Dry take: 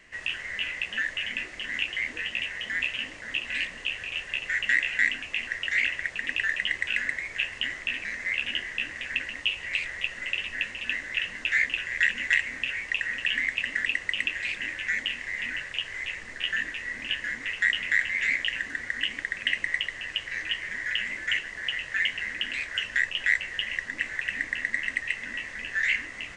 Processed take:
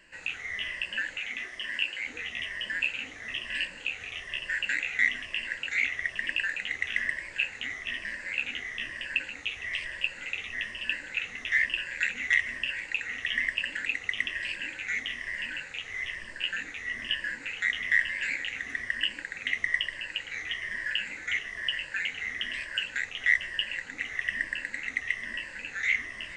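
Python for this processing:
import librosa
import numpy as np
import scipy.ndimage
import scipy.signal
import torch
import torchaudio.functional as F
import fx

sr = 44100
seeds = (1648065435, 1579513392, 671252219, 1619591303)

y = fx.spec_ripple(x, sr, per_octave=1.3, drift_hz=-1.1, depth_db=11)
y = fx.low_shelf(y, sr, hz=200.0, db=-11.0, at=(1.18, 2.06))
y = y + 10.0 ** (-17.0 / 20.0) * np.pad(y, (int(460 * sr / 1000.0), 0))[:len(y)]
y = y * 10.0 ** (-4.0 / 20.0)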